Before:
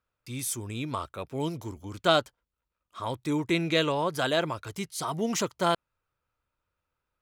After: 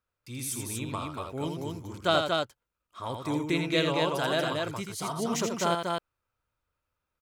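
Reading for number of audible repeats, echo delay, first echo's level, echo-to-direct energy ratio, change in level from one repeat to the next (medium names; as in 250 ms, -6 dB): 2, 82 ms, -5.5 dB, -1.0 dB, no regular repeats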